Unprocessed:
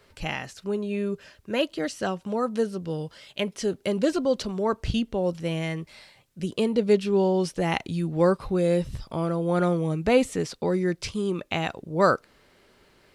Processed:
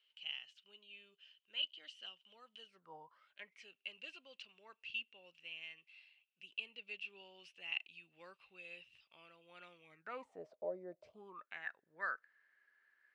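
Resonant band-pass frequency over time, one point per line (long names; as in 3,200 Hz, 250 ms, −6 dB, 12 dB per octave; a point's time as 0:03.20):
resonant band-pass, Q 16
0:02.66 3,000 Hz
0:02.95 810 Hz
0:03.68 2,700 Hz
0:09.82 2,700 Hz
0:10.41 620 Hz
0:11.10 620 Hz
0:11.55 1,700 Hz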